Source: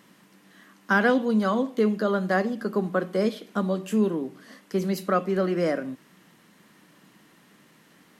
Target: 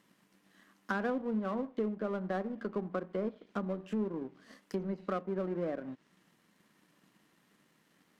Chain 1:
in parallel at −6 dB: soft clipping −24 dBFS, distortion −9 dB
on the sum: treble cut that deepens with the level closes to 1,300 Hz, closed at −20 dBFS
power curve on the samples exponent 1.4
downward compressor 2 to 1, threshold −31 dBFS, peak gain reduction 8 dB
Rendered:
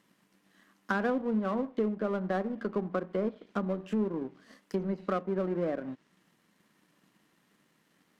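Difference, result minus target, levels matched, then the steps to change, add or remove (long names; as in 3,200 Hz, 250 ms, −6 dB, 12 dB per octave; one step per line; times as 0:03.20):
downward compressor: peak gain reduction −4 dB
change: downward compressor 2 to 1, threshold −39 dBFS, peak gain reduction 12 dB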